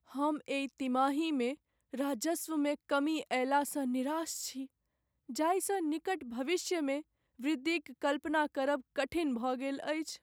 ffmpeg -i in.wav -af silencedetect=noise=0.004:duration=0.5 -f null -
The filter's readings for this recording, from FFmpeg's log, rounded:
silence_start: 4.66
silence_end: 5.29 | silence_duration: 0.63